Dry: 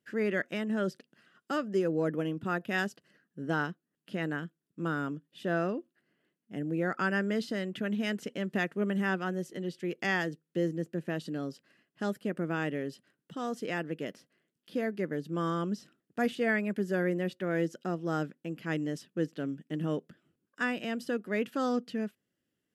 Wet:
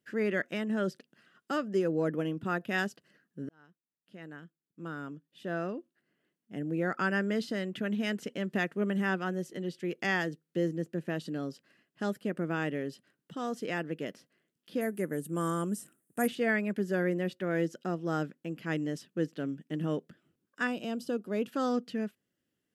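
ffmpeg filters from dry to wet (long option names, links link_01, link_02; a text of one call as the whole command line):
ffmpeg -i in.wav -filter_complex "[0:a]asettb=1/sr,asplit=3[link_01][link_02][link_03];[link_01]atrim=end=14.814[link_04];[link_02]atrim=start=14.81:end=16.28,asetpts=PTS-STARTPTS,afade=type=in:duration=0.004:curve=qsin,afade=type=out:start_time=1.466:duration=0.004:curve=qsin,highshelf=frequency=6600:width_type=q:width=3:gain=13.5[link_05];[link_03]atrim=start=16.276[link_06];[link_04][link_05]acrossfade=duration=0.004:curve1=hsin:curve2=qsin[link_07];[link_07][link_06]acrossfade=duration=0.004:curve1=qsin:curve2=hsin,asettb=1/sr,asplit=3[link_08][link_09][link_10];[link_08]atrim=end=20.674[link_11];[link_09]atrim=start=20.67:end=21.48,asetpts=PTS-STARTPTS,afade=type=in:duration=0.004:curve=qsin,afade=type=out:start_time=0.806:duration=0.004:curve=qsin,equalizer=frequency=1900:width_type=o:width=0.59:gain=-14.5[link_12];[link_10]atrim=start=21.476[link_13];[link_11][link_12]acrossfade=duration=0.004:curve1=hsin:curve2=qsin[link_14];[link_14][link_13]acrossfade=duration=0.004:curve1=qsin:curve2=hsin,asplit=2[link_15][link_16];[link_15]atrim=end=3.49,asetpts=PTS-STARTPTS,afade=type=out:start_time=3.486:duration=0.004:curve=hsin[link_17];[link_16]atrim=start=3.49,asetpts=PTS-STARTPTS,afade=type=in:duration=3.41[link_18];[link_17][link_18]concat=n=2:v=0:a=1" out.wav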